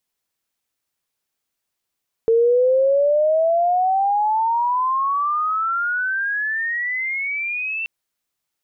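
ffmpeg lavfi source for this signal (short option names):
-f lavfi -i "aevalsrc='pow(10,(-12-10.5*t/5.58)/20)*sin(2*PI*450*5.58/log(2700/450)*(exp(log(2700/450)*t/5.58)-1))':d=5.58:s=44100"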